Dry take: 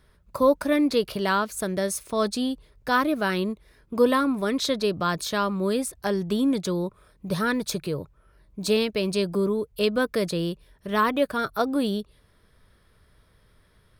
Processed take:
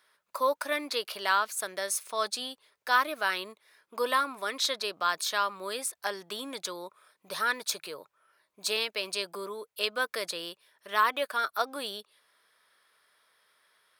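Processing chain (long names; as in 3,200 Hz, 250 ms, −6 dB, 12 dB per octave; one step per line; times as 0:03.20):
high-pass filter 880 Hz 12 dB per octave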